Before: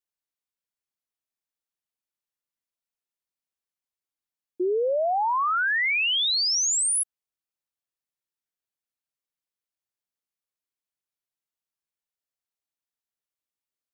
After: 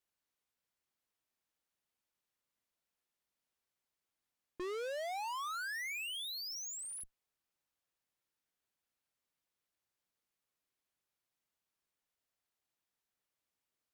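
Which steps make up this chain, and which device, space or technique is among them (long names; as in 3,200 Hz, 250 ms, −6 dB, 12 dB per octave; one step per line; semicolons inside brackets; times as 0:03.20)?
tube preamp driven hard (tube saturation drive 46 dB, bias 0.45; high-shelf EQ 3,900 Hz −5.5 dB)
level +7 dB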